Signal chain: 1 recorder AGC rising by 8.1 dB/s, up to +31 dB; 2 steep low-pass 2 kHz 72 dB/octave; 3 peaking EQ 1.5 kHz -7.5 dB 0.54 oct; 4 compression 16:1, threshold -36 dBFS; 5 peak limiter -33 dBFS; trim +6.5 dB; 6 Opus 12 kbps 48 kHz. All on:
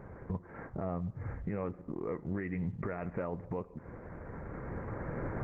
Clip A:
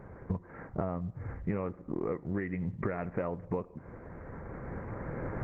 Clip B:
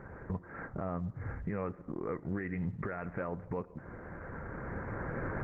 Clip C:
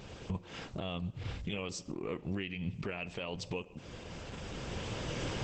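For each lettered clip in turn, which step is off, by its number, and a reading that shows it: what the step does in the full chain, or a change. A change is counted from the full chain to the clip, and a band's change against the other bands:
5, crest factor change +4.5 dB; 3, 2 kHz band +4.5 dB; 2, 2 kHz band +6.0 dB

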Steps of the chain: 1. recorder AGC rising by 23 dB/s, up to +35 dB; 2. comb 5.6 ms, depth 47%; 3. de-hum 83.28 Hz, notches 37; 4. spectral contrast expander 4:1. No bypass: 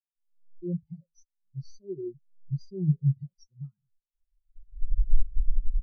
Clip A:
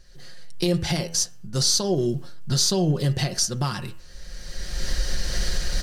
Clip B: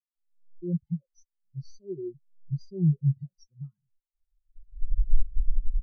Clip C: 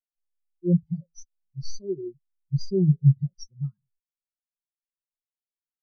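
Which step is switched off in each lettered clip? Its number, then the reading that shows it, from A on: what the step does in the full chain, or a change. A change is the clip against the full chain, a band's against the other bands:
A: 4, momentary loudness spread change -3 LU; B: 3, loudness change +1.0 LU; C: 1, crest factor change +2.5 dB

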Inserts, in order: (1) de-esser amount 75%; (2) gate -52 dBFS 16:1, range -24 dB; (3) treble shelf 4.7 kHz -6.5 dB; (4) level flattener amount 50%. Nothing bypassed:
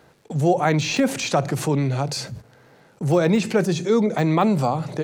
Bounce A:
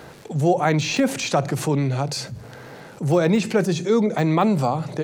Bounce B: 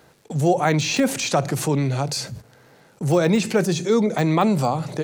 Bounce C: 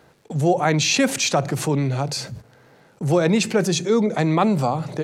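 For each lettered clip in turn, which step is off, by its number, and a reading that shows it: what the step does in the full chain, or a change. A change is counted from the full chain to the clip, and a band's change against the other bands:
2, momentary loudness spread change +3 LU; 3, 8 kHz band +3.5 dB; 1, momentary loudness spread change -2 LU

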